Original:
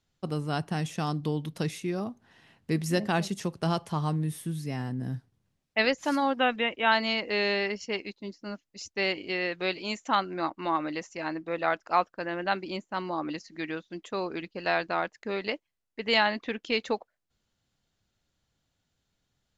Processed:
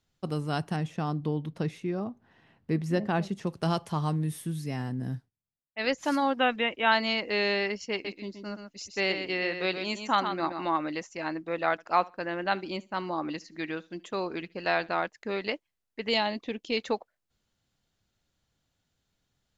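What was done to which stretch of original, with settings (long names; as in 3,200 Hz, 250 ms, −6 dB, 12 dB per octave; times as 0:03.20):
0:00.76–0:03.47: low-pass filter 1,600 Hz 6 dB per octave
0:05.13–0:05.93: duck −22.5 dB, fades 0.19 s
0:07.92–0:10.69: single-tap delay 125 ms −7.5 dB
0:11.71–0:14.97: repeating echo 72 ms, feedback 22%, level −23.5 dB
0:16.09–0:16.77: parametric band 1,500 Hz −11 dB 1.1 octaves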